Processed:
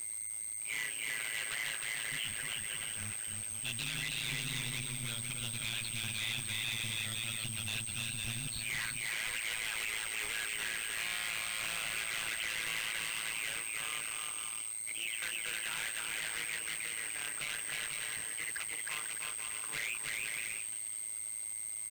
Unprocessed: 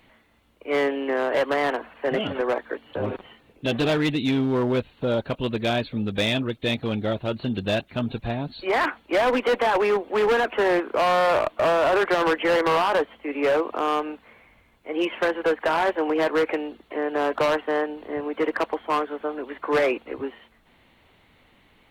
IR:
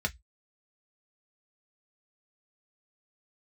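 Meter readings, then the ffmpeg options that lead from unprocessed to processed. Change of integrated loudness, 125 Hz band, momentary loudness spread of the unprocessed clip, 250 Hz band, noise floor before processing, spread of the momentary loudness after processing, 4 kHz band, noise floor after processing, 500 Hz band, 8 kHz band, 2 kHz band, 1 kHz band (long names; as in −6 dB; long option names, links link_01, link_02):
−11.5 dB, −13.5 dB, 10 LU, −26.5 dB, −59 dBFS, 3 LU, −4.0 dB, −41 dBFS, −34.0 dB, can't be measured, −7.5 dB, −24.0 dB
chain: -af "firequalizer=gain_entry='entry(150,0);entry(220,-25);entry(570,-24);entry(2000,9);entry(4900,4)':delay=0.05:min_phase=1,aecho=1:1:310|496|607.6|674.6|714.7:0.631|0.398|0.251|0.158|0.1,aeval=exprs='val(0)+0.01*sin(2*PI*8400*n/s)':channel_layout=same,equalizer=frequency=8200:width_type=o:width=1.3:gain=12,acrusher=bits=5:mix=0:aa=0.000001,tremolo=f=110:d=1,alimiter=limit=-13.5dB:level=0:latency=1:release=34,bandreject=frequency=1800:width=7.8,asoftclip=type=tanh:threshold=-27.5dB,volume=-4.5dB"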